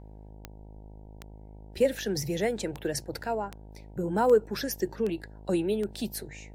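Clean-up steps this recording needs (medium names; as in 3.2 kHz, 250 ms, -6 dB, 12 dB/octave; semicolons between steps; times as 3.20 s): de-click; de-hum 52.3 Hz, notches 18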